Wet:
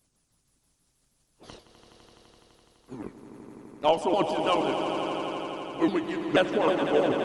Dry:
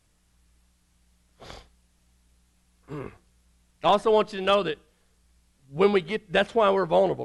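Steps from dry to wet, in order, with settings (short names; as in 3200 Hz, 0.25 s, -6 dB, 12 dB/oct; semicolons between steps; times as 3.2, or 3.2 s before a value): repeated pitch sweeps -4.5 st, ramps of 0.159 s; graphic EQ 125/250/2000/4000/8000 Hz +4/+8/-4/-3/-7 dB; harmonic-percussive split harmonic -16 dB; tone controls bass -5 dB, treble +11 dB; swelling echo 84 ms, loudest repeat 5, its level -11 dB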